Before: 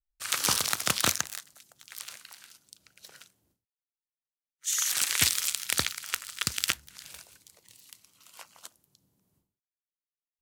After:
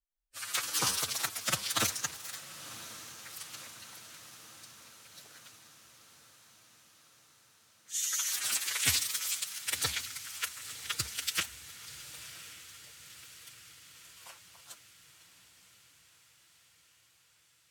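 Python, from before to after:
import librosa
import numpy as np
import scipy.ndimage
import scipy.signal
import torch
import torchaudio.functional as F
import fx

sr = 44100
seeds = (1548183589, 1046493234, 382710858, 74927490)

y = fx.stretch_vocoder(x, sr, factor=1.7)
y = fx.echo_diffused(y, sr, ms=1061, feedback_pct=63, wet_db=-14.5)
y = y * librosa.db_to_amplitude(-4.0)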